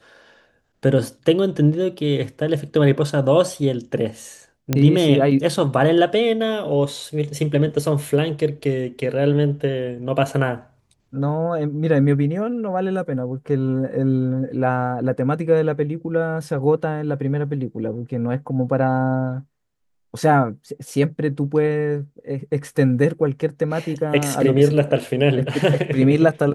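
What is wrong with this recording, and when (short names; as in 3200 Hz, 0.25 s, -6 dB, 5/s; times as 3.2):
4.73 pop -5 dBFS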